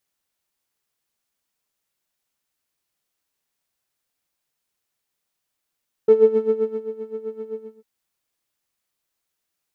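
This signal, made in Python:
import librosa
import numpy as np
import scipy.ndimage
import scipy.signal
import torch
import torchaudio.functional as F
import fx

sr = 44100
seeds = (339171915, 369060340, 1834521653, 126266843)

y = fx.sub_patch_tremolo(sr, seeds[0], note=69, wave='triangle', wave2='saw', interval_st=0, detune_cents=12, level2_db=-10.5, sub_db=-23, noise_db=-30.0, kind='bandpass', cutoff_hz=230.0, q=3.5, env_oct=0.5, env_decay_s=0.27, env_sustain_pct=40, attack_ms=5.4, decay_s=0.79, sustain_db=-16, release_s=0.32, note_s=1.43, lfo_hz=7.7, tremolo_db=14.5)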